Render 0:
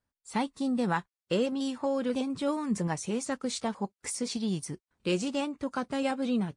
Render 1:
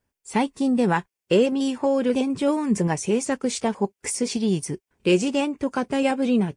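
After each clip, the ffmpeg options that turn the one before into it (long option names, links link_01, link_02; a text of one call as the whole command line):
ffmpeg -i in.wav -af "equalizer=frequency=400:width_type=o:width=0.33:gain=7,equalizer=frequency=1250:width_type=o:width=0.33:gain=-6,equalizer=frequency=2500:width_type=o:width=0.33:gain=3,equalizer=frequency=4000:width_type=o:width=0.33:gain=-7,volume=7.5dB" out.wav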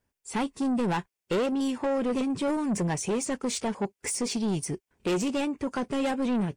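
ffmpeg -i in.wav -af "asoftclip=type=tanh:threshold=-22dB,volume=-1dB" out.wav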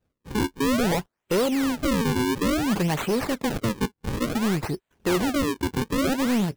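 ffmpeg -i in.wav -af "acrusher=samples=39:mix=1:aa=0.000001:lfo=1:lforange=62.4:lforate=0.57,volume=4dB" out.wav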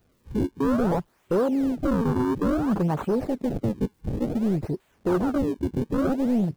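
ffmpeg -i in.wav -af "aeval=exprs='val(0)+0.5*0.00794*sgn(val(0))':channel_layout=same,afwtdn=0.0562" out.wav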